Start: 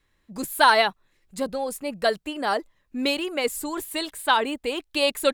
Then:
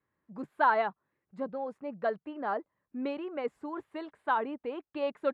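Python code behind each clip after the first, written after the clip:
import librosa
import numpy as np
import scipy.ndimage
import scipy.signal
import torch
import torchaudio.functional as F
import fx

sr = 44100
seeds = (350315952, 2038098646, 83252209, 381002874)

y = scipy.signal.sosfilt(scipy.signal.cheby1(2, 1.0, [130.0, 1300.0], 'bandpass', fs=sr, output='sos'), x)
y = y * 10.0 ** (-7.0 / 20.0)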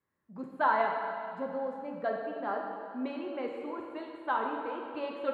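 y = fx.rev_plate(x, sr, seeds[0], rt60_s=2.3, hf_ratio=0.95, predelay_ms=0, drr_db=0.5)
y = y * 10.0 ** (-3.0 / 20.0)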